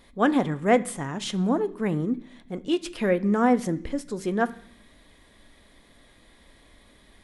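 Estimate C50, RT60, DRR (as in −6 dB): 18.5 dB, 0.70 s, 11.5 dB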